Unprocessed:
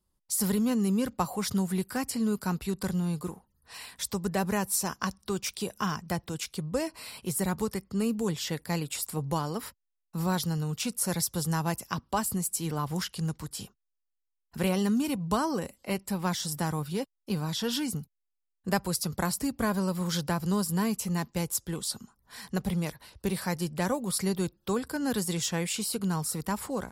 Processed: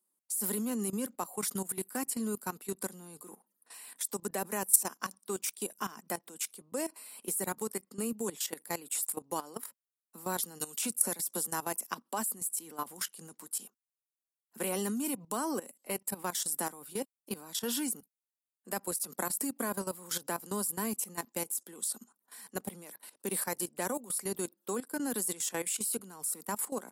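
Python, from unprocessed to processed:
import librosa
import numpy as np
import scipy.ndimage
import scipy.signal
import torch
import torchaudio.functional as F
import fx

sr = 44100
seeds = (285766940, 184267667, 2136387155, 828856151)

y = fx.band_squash(x, sr, depth_pct=70, at=(10.6, 11.47))
y = scipy.signal.sosfilt(scipy.signal.butter(6, 220.0, 'highpass', fs=sr, output='sos'), y)
y = fx.high_shelf_res(y, sr, hz=6700.0, db=9.5, q=1.5)
y = fx.level_steps(y, sr, step_db=16)
y = y * librosa.db_to_amplitude(-1.0)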